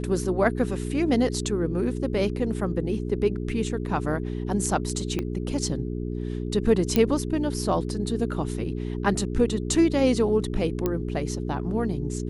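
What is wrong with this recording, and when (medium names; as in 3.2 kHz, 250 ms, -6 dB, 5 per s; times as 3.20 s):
hum 60 Hz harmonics 7 -30 dBFS
5.19 s: pop -15 dBFS
6.96 s: pop -8 dBFS
10.86 s: pop -12 dBFS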